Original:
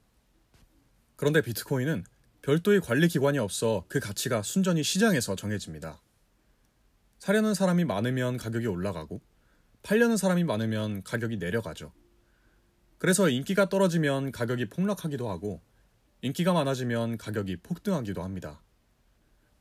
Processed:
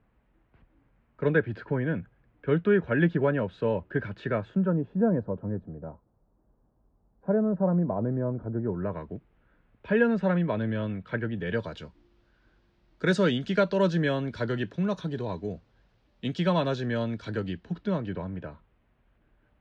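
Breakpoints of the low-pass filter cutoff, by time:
low-pass filter 24 dB per octave
0:04.42 2,400 Hz
0:04.85 1,000 Hz
0:08.61 1,000 Hz
0:09.09 2,700 Hz
0:11.23 2,700 Hz
0:11.73 4,800 Hz
0:17.38 4,800 Hz
0:18.38 2,800 Hz

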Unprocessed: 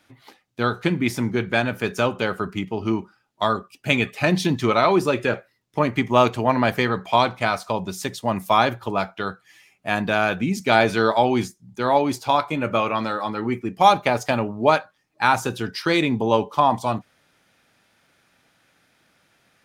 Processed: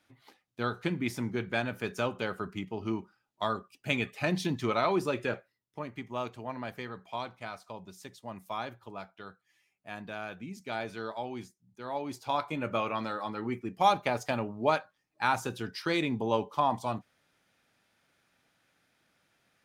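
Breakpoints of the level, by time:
0:05.32 −10 dB
0:05.85 −19 dB
0:11.82 −19 dB
0:12.45 −9.5 dB

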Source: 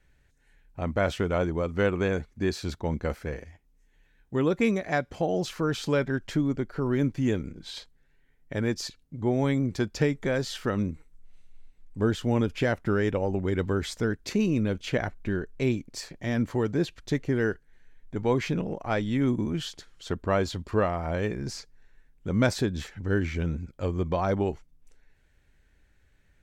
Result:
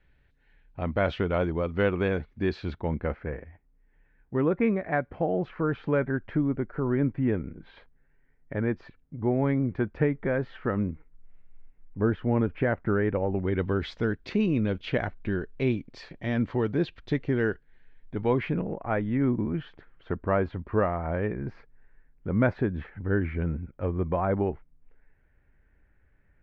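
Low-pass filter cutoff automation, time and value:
low-pass filter 24 dB per octave
0:02.48 3,700 Hz
0:03.34 2,100 Hz
0:13.15 2,100 Hz
0:13.81 3,700 Hz
0:18.18 3,700 Hz
0:18.63 2,100 Hz

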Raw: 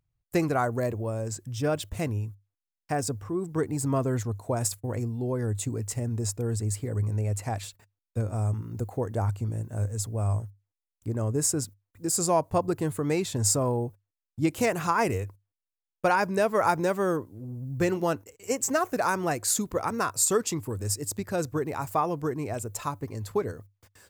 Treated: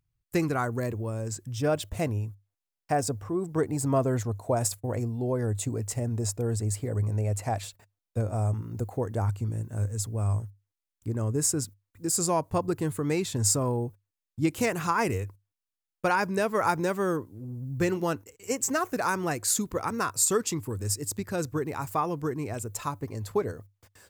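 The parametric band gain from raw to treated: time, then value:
parametric band 650 Hz 0.76 octaves
0:01.10 −6.5 dB
0:01.89 +4.5 dB
0:08.44 +4.5 dB
0:09.46 −4.5 dB
0:22.71 −4.5 dB
0:23.14 +1.5 dB

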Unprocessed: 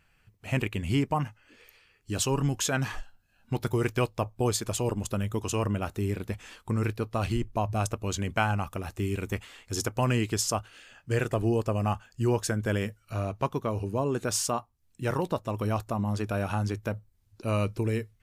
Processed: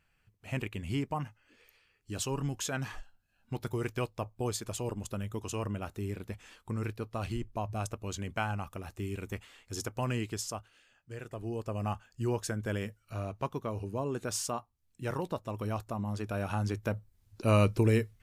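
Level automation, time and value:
0:10.22 −7 dB
0:11.17 −16.5 dB
0:11.84 −6 dB
0:16.19 −6 dB
0:17.46 +3 dB

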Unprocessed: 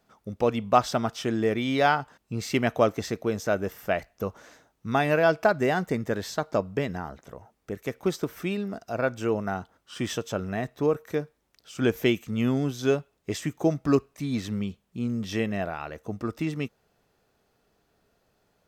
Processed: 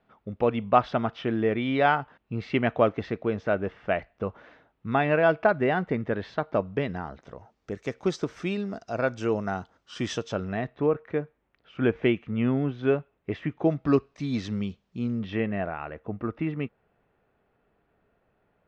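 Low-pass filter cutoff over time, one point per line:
low-pass filter 24 dB per octave
0:06.50 3,200 Hz
0:07.74 6,500 Hz
0:10.16 6,500 Hz
0:10.90 2,700 Hz
0:13.46 2,700 Hz
0:14.27 5,800 Hz
0:14.97 5,800 Hz
0:15.39 2,600 Hz

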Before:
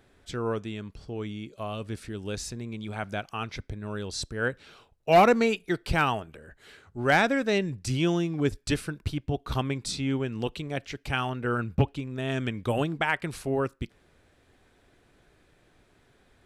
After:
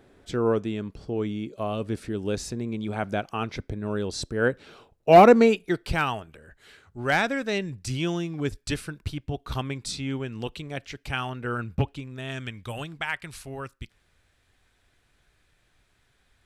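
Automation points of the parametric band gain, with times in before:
parametric band 350 Hz 2.9 octaves
0:05.44 +7.5 dB
0:06.04 −3 dB
0:11.92 −3 dB
0:12.66 −12 dB

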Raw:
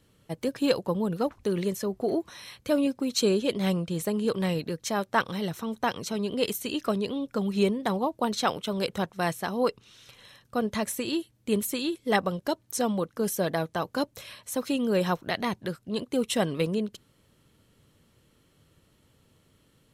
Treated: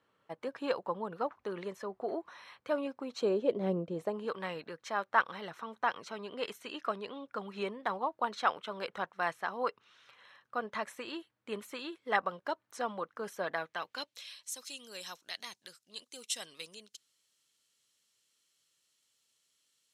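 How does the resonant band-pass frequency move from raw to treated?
resonant band-pass, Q 1.3
0:02.97 1,100 Hz
0:03.78 390 Hz
0:04.34 1,300 Hz
0:13.45 1,300 Hz
0:14.52 6,300 Hz

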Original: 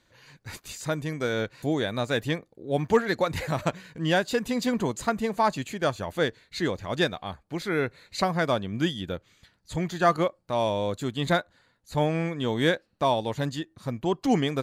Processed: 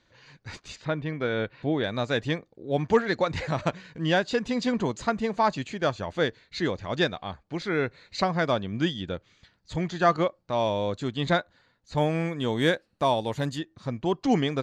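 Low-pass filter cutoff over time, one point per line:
low-pass filter 24 dB per octave
6,200 Hz
from 0:00.76 3,700 Hz
from 0:01.84 6,300 Hz
from 0:11.97 12,000 Hz
from 0:13.58 6,500 Hz

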